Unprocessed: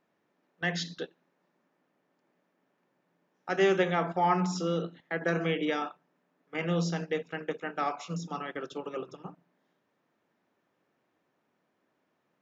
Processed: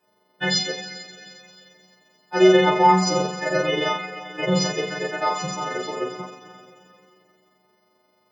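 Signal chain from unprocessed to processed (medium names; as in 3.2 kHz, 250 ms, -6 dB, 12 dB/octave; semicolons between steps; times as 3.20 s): partials quantised in pitch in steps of 3 st; two-slope reverb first 0.42 s, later 4.3 s, from -18 dB, DRR -7.5 dB; granular stretch 0.67×, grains 88 ms; trim +1 dB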